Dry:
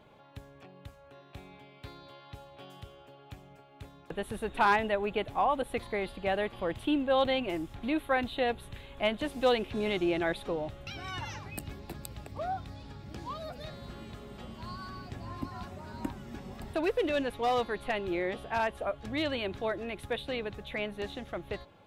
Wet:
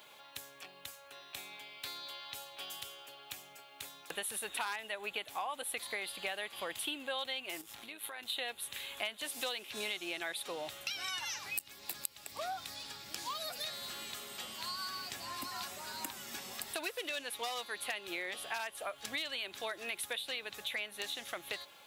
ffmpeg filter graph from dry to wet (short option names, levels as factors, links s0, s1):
-filter_complex "[0:a]asettb=1/sr,asplit=3[s0][s1][s2];[s0]atrim=end=7.614[s3];[s1]atrim=start=7.61:end=8.3,asetpts=PTS-STARTPTS,afade=t=in:d=0.004:c=qsin,afade=t=out:st=0.686:d=0.004:c=qsin,tremolo=f=110:d=0.571,acompressor=threshold=0.00794:ratio=20:attack=3.2:release=140:knee=1:detection=peak[s4];[s2]atrim=start=8.296[s5];[s3][s4]acrossfade=d=0.004:c1=hsin:c2=qsin[s6];[s6][s5]acrossfade=d=0.004:c1=qsin:c2=hsin,aderivative,acompressor=threshold=0.002:ratio=6,volume=7.94"